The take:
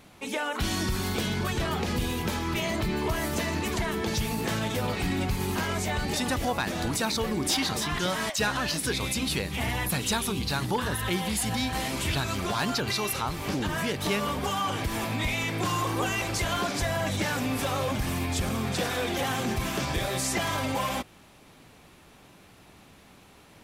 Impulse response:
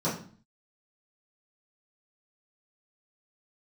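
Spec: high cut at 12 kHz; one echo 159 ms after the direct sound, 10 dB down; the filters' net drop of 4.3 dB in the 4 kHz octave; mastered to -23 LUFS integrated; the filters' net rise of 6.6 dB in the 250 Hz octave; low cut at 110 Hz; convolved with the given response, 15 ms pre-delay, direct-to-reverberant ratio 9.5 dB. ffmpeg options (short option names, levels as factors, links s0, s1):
-filter_complex "[0:a]highpass=110,lowpass=12000,equalizer=f=250:t=o:g=8.5,equalizer=f=4000:t=o:g=-5.5,aecho=1:1:159:0.316,asplit=2[s0][s1];[1:a]atrim=start_sample=2205,adelay=15[s2];[s1][s2]afir=irnorm=-1:irlink=0,volume=0.106[s3];[s0][s3]amix=inputs=2:normalize=0,volume=1.12"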